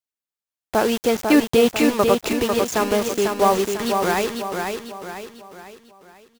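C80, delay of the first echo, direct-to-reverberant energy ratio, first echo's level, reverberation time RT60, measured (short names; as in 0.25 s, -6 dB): none, 0.497 s, none, -5.0 dB, none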